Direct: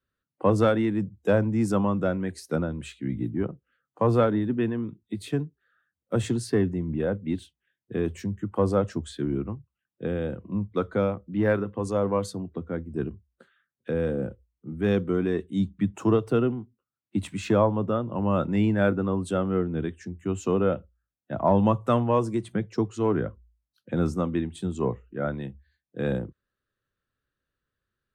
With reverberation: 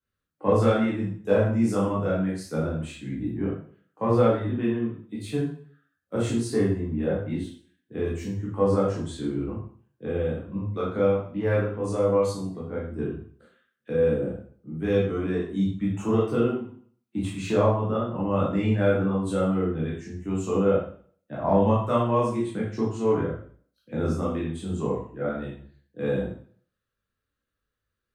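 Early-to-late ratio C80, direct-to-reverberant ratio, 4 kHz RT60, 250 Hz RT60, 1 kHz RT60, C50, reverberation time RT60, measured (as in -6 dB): 7.0 dB, -7.0 dB, 0.45 s, 0.50 s, 0.50 s, 3.0 dB, 0.50 s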